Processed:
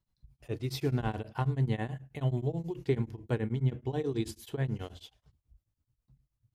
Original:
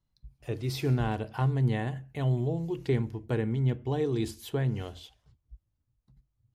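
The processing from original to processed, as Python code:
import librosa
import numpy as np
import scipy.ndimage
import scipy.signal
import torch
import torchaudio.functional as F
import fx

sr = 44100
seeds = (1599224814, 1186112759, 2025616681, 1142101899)

y = x * np.abs(np.cos(np.pi * 9.3 * np.arange(len(x)) / sr))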